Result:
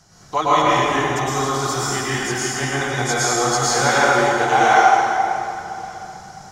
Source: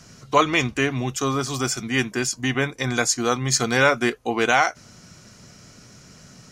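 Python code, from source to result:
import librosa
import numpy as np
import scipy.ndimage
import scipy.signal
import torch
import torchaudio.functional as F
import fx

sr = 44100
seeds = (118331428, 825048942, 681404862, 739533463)

y = fx.graphic_eq_31(x, sr, hz=(125, 250, 500, 800, 2500), db=(-3, -11, -5, 11, -8))
y = y + 10.0 ** (-24.0 / 20.0) * np.pad(y, (int(1169 * sr / 1000.0), 0))[:len(y)]
y = fx.rev_plate(y, sr, seeds[0], rt60_s=2.8, hf_ratio=0.75, predelay_ms=95, drr_db=-9.5)
y = y * librosa.db_to_amplitude(-5.5)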